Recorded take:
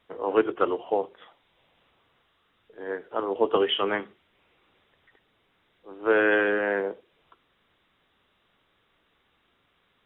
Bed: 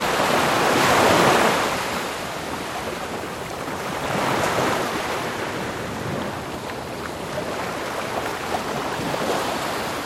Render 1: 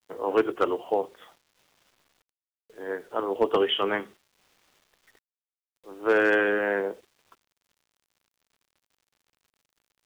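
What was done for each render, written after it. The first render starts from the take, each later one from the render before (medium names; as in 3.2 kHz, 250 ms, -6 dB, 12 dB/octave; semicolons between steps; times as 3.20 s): hard clipper -13 dBFS, distortion -23 dB; bit crusher 10-bit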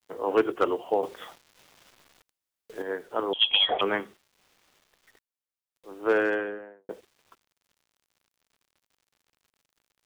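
1.03–2.82 s: gain +8 dB; 3.33–3.81 s: frequency inversion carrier 3.7 kHz; 5.91–6.89 s: studio fade out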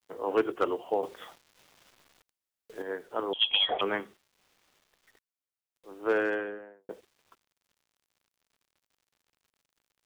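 trim -3.5 dB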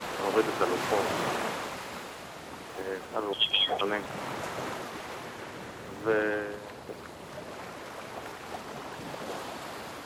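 add bed -14.5 dB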